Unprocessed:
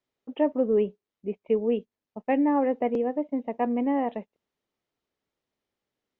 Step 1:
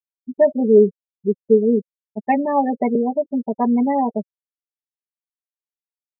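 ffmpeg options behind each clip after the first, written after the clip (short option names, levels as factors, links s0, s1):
-af "afftfilt=real='re*gte(hypot(re,im),0.0631)':imag='im*gte(hypot(re,im),0.0631)':win_size=1024:overlap=0.75,bandreject=f=530:w=12,aecho=1:1:5:0.83,volume=2.24"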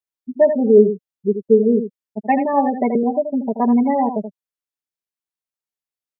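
-af "aecho=1:1:80:0.355,volume=1.12"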